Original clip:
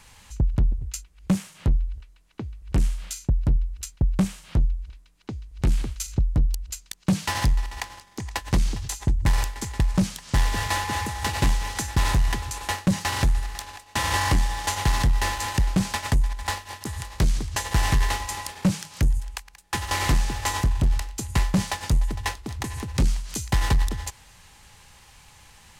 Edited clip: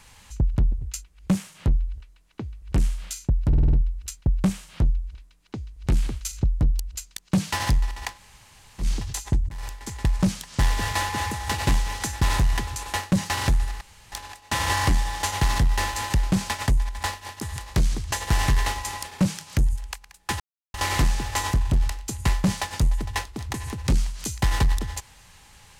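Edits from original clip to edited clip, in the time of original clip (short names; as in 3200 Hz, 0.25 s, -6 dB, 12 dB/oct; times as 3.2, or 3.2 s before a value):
3.48 stutter 0.05 s, 6 plays
7.9–8.58 room tone, crossfade 0.10 s
9.24–9.84 fade in, from -24 dB
13.56 insert room tone 0.31 s
19.84 insert silence 0.34 s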